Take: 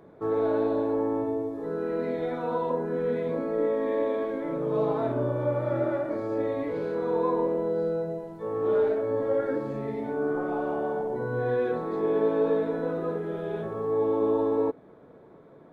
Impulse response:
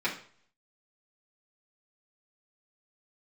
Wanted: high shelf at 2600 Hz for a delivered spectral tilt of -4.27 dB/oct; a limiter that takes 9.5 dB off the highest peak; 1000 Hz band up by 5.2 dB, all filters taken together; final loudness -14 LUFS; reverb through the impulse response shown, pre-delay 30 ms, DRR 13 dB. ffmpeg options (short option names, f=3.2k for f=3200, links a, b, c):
-filter_complex "[0:a]equalizer=f=1k:t=o:g=7.5,highshelf=f=2.6k:g=-8.5,alimiter=limit=-20.5dB:level=0:latency=1,asplit=2[a][b];[1:a]atrim=start_sample=2205,adelay=30[c];[b][c]afir=irnorm=-1:irlink=0,volume=-22.5dB[d];[a][d]amix=inputs=2:normalize=0,volume=15dB"